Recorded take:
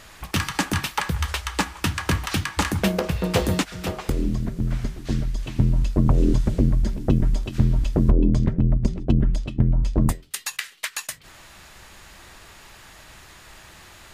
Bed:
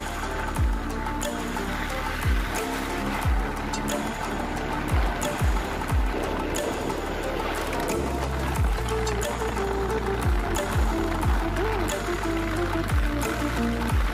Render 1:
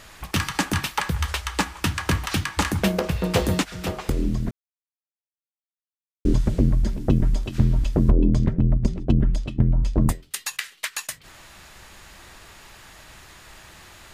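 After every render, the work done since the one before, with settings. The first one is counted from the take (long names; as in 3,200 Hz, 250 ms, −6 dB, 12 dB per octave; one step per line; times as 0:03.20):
0:04.51–0:06.25: silence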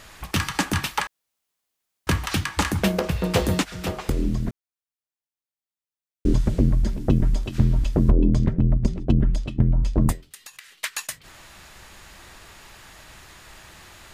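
0:01.07–0:02.07: fill with room tone
0:10.27–0:10.74: downward compressor, threshold −39 dBFS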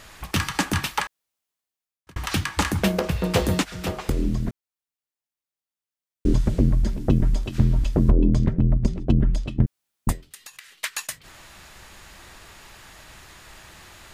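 0:00.98–0:02.16: fade out
0:09.66–0:10.07: fill with room tone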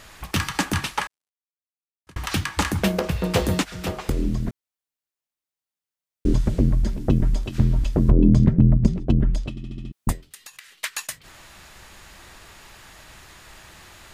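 0:00.76–0:02.17: variable-slope delta modulation 64 kbit/s
0:08.11–0:08.98: parametric band 170 Hz +7 dB 1.7 octaves
0:09.50: stutter in place 0.07 s, 6 plays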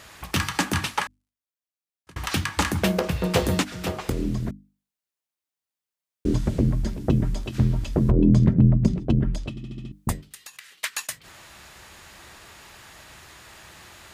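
high-pass filter 54 Hz
mains-hum notches 50/100/150/200/250/300 Hz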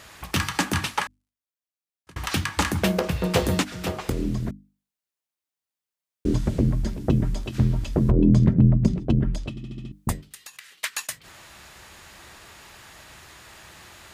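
no processing that can be heard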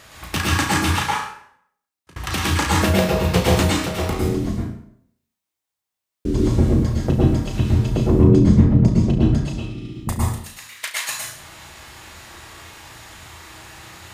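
on a send: flutter between parallel walls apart 6 metres, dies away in 0.28 s
on the sum: dense smooth reverb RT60 0.65 s, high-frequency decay 0.8×, pre-delay 95 ms, DRR −3.5 dB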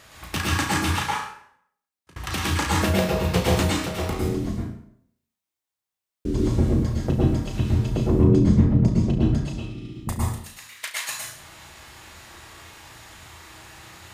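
level −4 dB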